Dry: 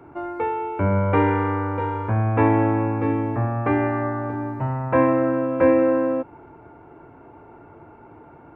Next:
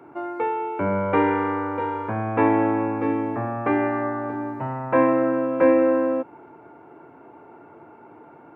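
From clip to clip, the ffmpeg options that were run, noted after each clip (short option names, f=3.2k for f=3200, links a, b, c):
-af "highpass=190"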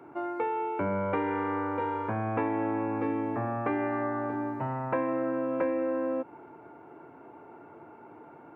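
-af "acompressor=threshold=-23dB:ratio=6,volume=-3dB"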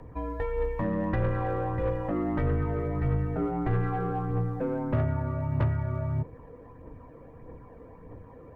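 -af "aphaser=in_gain=1:out_gain=1:delay=1.3:decay=0.42:speed=1.6:type=triangular,asoftclip=type=tanh:threshold=-20dB,afreqshift=-410,volume=2dB"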